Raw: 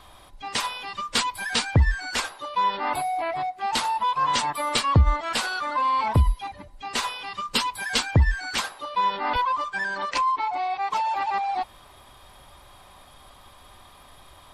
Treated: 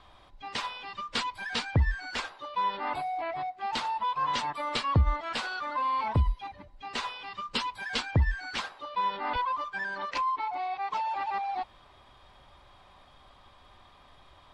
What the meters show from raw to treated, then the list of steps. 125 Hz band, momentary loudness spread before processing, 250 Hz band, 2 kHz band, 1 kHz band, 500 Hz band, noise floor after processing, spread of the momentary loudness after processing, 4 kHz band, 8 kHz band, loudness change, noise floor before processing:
-6.0 dB, 8 LU, -6.0 dB, -6.0 dB, -6.0 dB, -6.0 dB, -57 dBFS, 9 LU, -7.5 dB, -14.5 dB, -6.5 dB, -51 dBFS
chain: low-pass 4.7 kHz 12 dB/octave; trim -6 dB

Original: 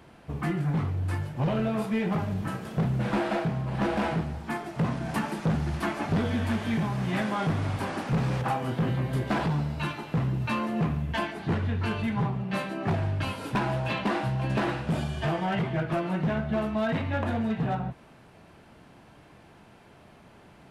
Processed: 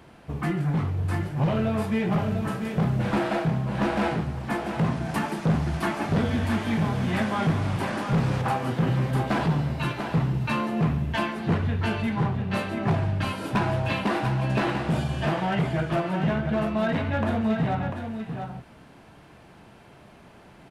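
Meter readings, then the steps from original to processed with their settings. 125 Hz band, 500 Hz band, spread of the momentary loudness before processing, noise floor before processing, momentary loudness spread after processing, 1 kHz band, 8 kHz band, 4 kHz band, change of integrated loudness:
+3.0 dB, +3.0 dB, 4 LU, -54 dBFS, 4 LU, +3.0 dB, +3.0 dB, +2.5 dB, +3.0 dB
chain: delay 694 ms -7 dB; trim +2 dB

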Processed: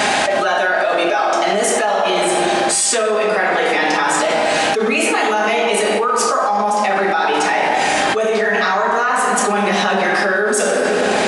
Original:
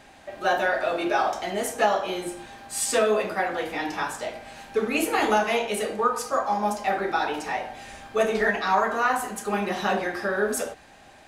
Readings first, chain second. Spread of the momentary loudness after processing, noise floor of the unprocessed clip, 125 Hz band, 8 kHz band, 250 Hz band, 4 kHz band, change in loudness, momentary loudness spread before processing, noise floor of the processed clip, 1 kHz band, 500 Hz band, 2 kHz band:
1 LU, -51 dBFS, +9.0 dB, +13.0 dB, +8.5 dB, +13.5 dB, +10.0 dB, 10 LU, -17 dBFS, +10.0 dB, +9.5 dB, +11.5 dB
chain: Bessel high-pass 160 Hz, order 2; bass shelf 320 Hz -7.5 dB; simulated room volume 2400 m³, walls mixed, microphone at 1.4 m; resampled via 22.05 kHz; level flattener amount 100%

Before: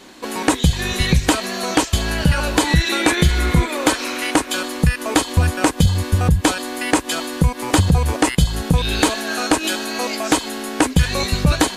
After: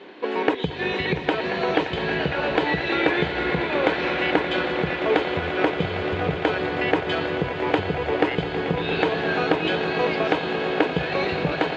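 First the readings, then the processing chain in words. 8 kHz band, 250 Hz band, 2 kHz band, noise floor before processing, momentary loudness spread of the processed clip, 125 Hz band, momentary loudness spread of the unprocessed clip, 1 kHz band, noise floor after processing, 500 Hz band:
under -30 dB, -6.0 dB, -2.0 dB, -32 dBFS, 3 LU, -12.5 dB, 5 LU, -2.5 dB, -30 dBFS, +2.0 dB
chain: compression, threshold -17 dBFS, peak gain reduction 8 dB; cabinet simulation 180–3100 Hz, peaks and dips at 240 Hz -7 dB, 430 Hz +9 dB, 1.2 kHz -4 dB; echo with a slow build-up 115 ms, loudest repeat 8, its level -14.5 dB

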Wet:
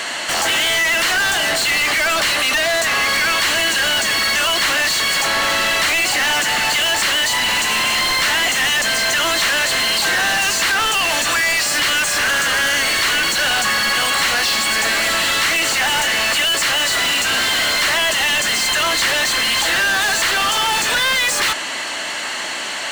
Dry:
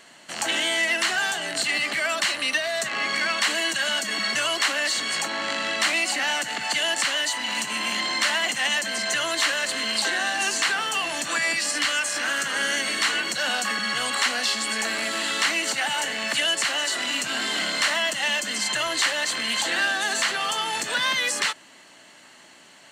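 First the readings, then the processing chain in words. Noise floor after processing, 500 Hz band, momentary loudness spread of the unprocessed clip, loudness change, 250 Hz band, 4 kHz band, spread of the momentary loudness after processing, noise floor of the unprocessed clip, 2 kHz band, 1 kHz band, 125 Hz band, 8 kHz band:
-25 dBFS, +7.0 dB, 3 LU, +8.0 dB, +5.0 dB, +8.0 dB, 1 LU, -50 dBFS, +8.0 dB, +8.5 dB, +12.5 dB, +8.0 dB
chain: overdrive pedal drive 35 dB, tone 6.3 kHz, clips at -11 dBFS

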